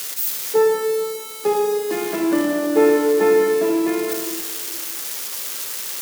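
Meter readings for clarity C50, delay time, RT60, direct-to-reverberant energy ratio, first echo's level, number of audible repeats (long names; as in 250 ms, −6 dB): 3.5 dB, no echo audible, 1.8 s, 3.0 dB, no echo audible, no echo audible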